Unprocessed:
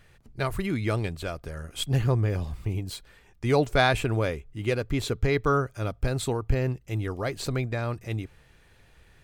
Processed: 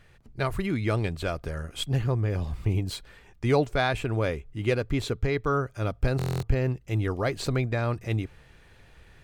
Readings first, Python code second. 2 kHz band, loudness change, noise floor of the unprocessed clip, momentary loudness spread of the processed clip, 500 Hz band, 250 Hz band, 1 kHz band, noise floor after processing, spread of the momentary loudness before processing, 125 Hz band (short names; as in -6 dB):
-1.5 dB, -0.5 dB, -58 dBFS, 6 LU, -0.5 dB, 0.0 dB, -2.0 dB, -56 dBFS, 12 LU, +0.5 dB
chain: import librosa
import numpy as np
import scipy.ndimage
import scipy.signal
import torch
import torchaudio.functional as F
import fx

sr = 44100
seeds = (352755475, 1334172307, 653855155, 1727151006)

y = fx.high_shelf(x, sr, hz=7000.0, db=-6.5)
y = fx.rider(y, sr, range_db=4, speed_s=0.5)
y = fx.buffer_glitch(y, sr, at_s=(6.17,), block=1024, repeats=10)